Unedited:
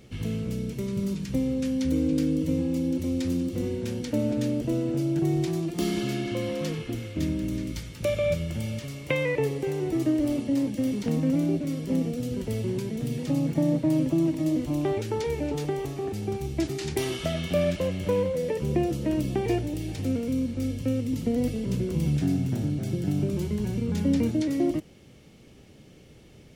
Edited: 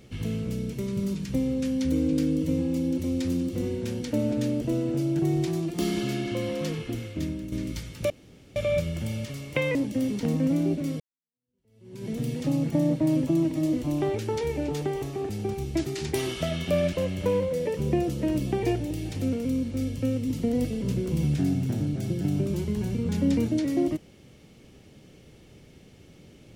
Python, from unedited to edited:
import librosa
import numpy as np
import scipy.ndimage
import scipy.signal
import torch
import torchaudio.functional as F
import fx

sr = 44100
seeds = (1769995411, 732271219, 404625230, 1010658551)

y = fx.edit(x, sr, fx.fade_out_to(start_s=7.01, length_s=0.51, floor_db=-8.5),
    fx.insert_room_tone(at_s=8.1, length_s=0.46),
    fx.cut(start_s=9.29, length_s=1.29),
    fx.fade_in_span(start_s=11.83, length_s=1.08, curve='exp'), tone=tone)